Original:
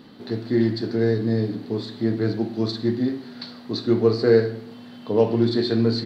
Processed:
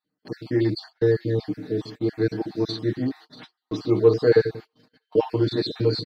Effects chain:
time-frequency cells dropped at random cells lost 41%
delay with a high-pass on its return 636 ms, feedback 33%, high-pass 1,600 Hz, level −14 dB
noise gate −39 dBFS, range −34 dB
comb filter 6.5 ms, depth 97%
level −2.5 dB

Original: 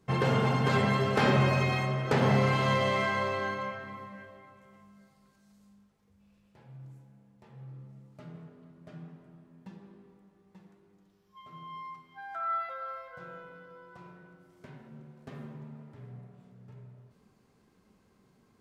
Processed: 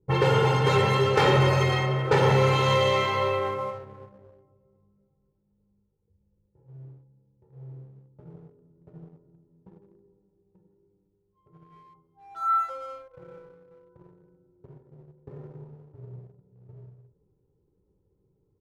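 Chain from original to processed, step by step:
low-pass that shuts in the quiet parts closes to 330 Hz, open at −22.5 dBFS
comb filter 2.2 ms, depth 87%
leveller curve on the samples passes 1

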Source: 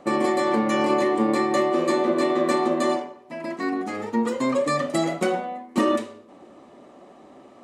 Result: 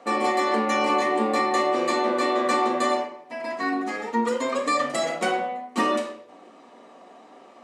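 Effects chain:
meter weighting curve A
on a send: convolution reverb RT60 0.50 s, pre-delay 4 ms, DRR 1.5 dB

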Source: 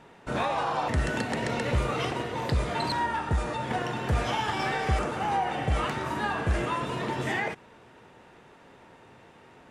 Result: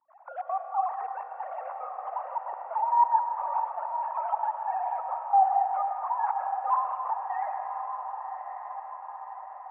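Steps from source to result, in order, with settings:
three sine waves on the formant tracks
in parallel at −2 dB: downward compressor, threshold −35 dBFS, peak gain reduction 18 dB
on the sum: gate pattern ".xxxx.x." 183 BPM −24 dB
mains hum 60 Hz, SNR 31 dB
flat-topped band-pass 920 Hz, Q 2.3
on a send: feedback delay with all-pass diffusion 1,129 ms, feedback 57%, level −8 dB
on the sum: comb and all-pass reverb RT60 2.2 s, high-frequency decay 0.75×, pre-delay 65 ms, DRR 5 dB

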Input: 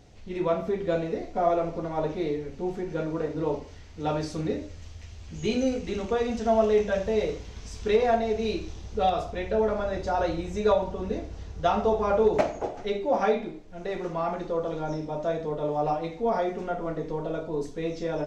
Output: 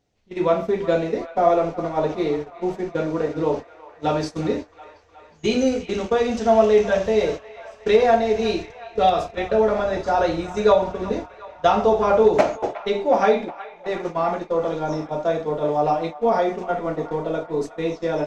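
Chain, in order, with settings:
noise gate −32 dBFS, range −22 dB
low-shelf EQ 100 Hz −11 dB
delay with a band-pass on its return 364 ms, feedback 64%, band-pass 1,500 Hz, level −14 dB
level +7 dB

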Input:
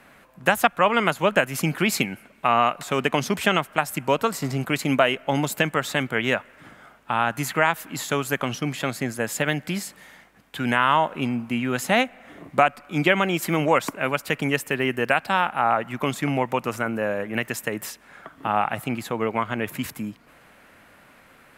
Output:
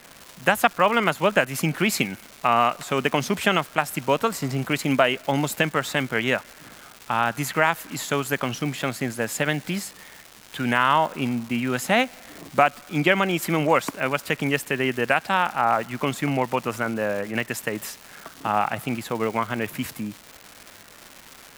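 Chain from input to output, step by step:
surface crackle 470 per second −31 dBFS

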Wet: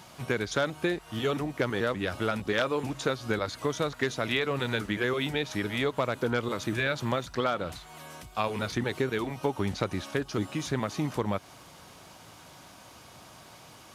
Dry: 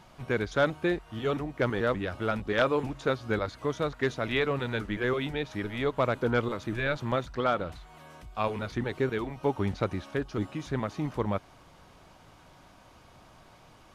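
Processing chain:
high-pass filter 84 Hz
high-shelf EQ 4,100 Hz +11.5 dB
downward compressor 4 to 1, threshold −28 dBFS, peak gain reduction 8.5 dB
level +3.5 dB

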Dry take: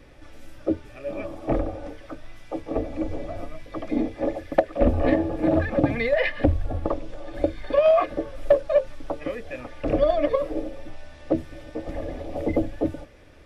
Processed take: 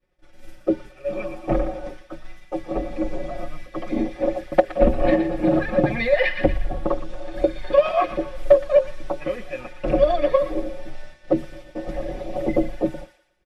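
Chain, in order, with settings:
downward expander −34 dBFS
comb filter 5.5 ms, depth 94%
on a send: delay with a high-pass on its return 118 ms, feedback 37%, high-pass 1,500 Hz, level −8 dB

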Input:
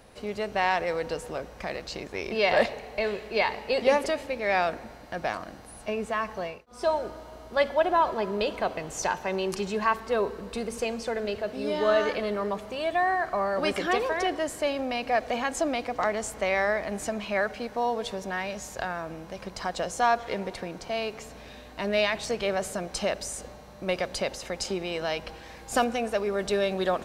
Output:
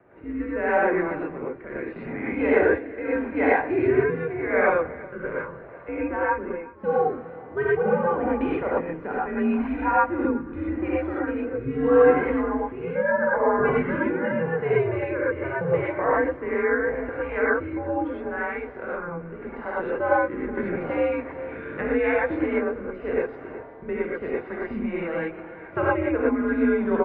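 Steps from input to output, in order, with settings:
on a send: single-tap delay 370 ms −19 dB
on the sum: rotating-speaker cabinet horn 0.8 Hz, later 5 Hz, at 0:24.28
single-sideband voice off tune −150 Hz 260–2,200 Hz
reverb whose tail is shaped and stops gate 140 ms rising, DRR −7 dB
0:20.57–0:22.31: multiband upward and downward compressor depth 70%

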